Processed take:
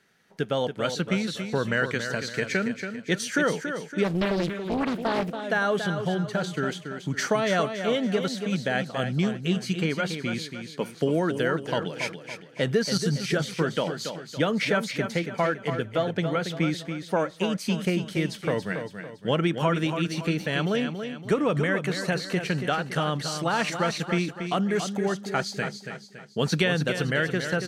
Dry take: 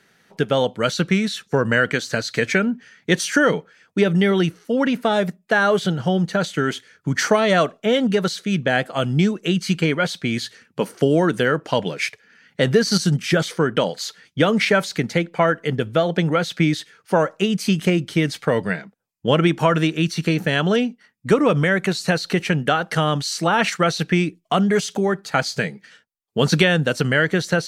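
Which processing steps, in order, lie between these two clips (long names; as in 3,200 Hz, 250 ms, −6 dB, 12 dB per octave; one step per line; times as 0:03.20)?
on a send: repeating echo 281 ms, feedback 42%, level −8 dB
0:04.04–0:05.44: on the sum: highs frequency-modulated by the lows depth 0.93 ms
level −7.5 dB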